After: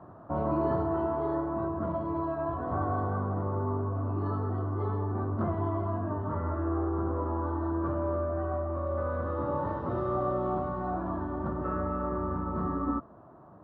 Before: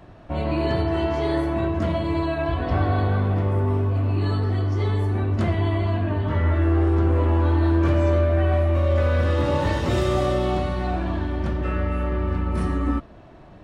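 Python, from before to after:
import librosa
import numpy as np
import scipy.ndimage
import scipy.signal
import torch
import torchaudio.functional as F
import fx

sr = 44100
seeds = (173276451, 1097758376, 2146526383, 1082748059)

y = scipy.signal.sosfilt(scipy.signal.butter(2, 110.0, 'highpass', fs=sr, output='sos'), x)
y = fx.high_shelf_res(y, sr, hz=1700.0, db=-12.0, q=3.0)
y = fx.rider(y, sr, range_db=10, speed_s=2.0)
y = fx.air_absorb(y, sr, metres=310.0)
y = F.gain(torch.from_numpy(y), -7.5).numpy()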